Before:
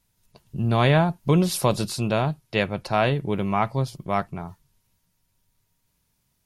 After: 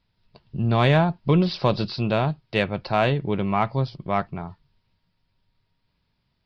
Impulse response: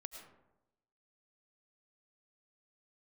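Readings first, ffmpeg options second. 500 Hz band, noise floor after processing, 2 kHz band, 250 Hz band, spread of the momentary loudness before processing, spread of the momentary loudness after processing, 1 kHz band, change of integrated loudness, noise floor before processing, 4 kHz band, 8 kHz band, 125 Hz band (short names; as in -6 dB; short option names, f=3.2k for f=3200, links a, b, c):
+0.5 dB, -73 dBFS, +0.5 dB, +0.5 dB, 9 LU, 9 LU, +0.5 dB, +0.5 dB, -72 dBFS, +0.5 dB, under -20 dB, +0.5 dB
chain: -af "aresample=11025,aresample=44100,aeval=exprs='0.447*(cos(1*acos(clip(val(0)/0.447,-1,1)))-cos(1*PI/2))+0.0112*(cos(5*acos(clip(val(0)/0.447,-1,1)))-cos(5*PI/2))':c=same"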